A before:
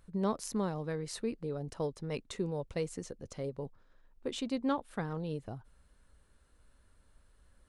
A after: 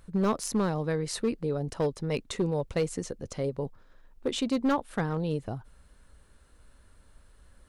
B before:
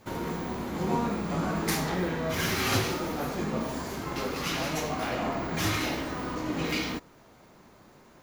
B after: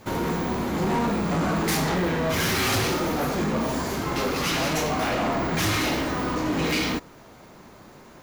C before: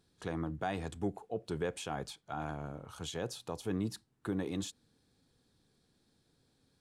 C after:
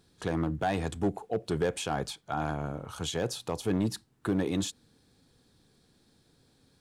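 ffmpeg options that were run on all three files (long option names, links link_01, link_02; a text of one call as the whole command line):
ffmpeg -i in.wav -af "volume=28dB,asoftclip=hard,volume=-28dB,volume=7.5dB" out.wav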